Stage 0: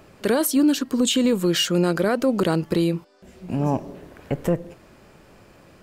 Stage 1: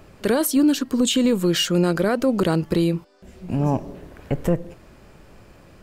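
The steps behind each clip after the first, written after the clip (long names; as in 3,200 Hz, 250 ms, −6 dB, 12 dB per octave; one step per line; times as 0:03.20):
low-shelf EQ 78 Hz +11 dB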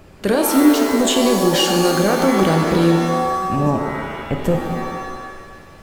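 reverb with rising layers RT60 1.5 s, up +7 semitones, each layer −2 dB, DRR 4 dB
level +2 dB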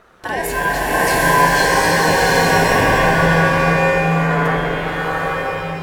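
ring modulation 1,300 Hz
low shelf with overshoot 720 Hz +8.5 dB, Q 1.5
slow-attack reverb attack 780 ms, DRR −6 dB
level −4 dB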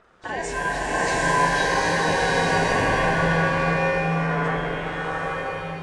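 hearing-aid frequency compression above 3,300 Hz 1.5 to 1
level −7 dB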